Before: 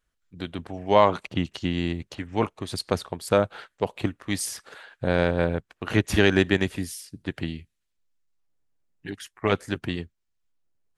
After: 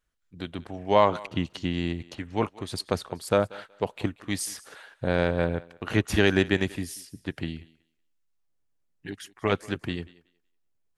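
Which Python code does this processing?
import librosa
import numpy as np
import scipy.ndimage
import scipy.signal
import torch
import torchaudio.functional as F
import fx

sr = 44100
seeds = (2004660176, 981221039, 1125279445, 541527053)

y = fx.echo_thinned(x, sr, ms=186, feedback_pct=19, hz=280.0, wet_db=-20.5)
y = F.gain(torch.from_numpy(y), -2.0).numpy()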